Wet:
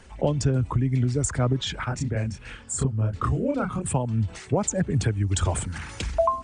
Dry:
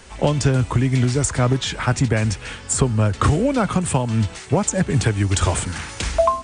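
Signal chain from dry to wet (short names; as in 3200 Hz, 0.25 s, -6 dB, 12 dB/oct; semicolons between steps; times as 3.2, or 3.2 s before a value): formant sharpening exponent 1.5; 1.84–3.86 chorus voices 2, 1.5 Hz, delay 28 ms, depth 3 ms; gain -5 dB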